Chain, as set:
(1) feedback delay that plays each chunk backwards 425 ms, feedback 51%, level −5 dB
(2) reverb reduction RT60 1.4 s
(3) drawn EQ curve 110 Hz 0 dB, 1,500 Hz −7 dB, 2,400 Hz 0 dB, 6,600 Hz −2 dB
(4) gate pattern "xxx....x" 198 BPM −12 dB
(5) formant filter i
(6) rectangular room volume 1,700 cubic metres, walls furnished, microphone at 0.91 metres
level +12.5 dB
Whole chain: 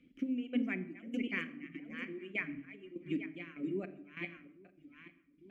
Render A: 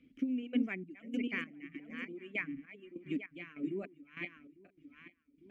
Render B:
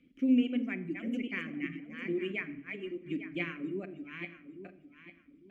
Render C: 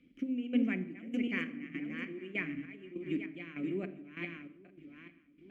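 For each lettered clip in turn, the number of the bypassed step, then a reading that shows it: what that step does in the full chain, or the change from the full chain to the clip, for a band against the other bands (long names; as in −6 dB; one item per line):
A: 6, echo-to-direct ratio −9.5 dB to none audible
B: 4, 250 Hz band +2.5 dB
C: 2, change in integrated loudness +2.5 LU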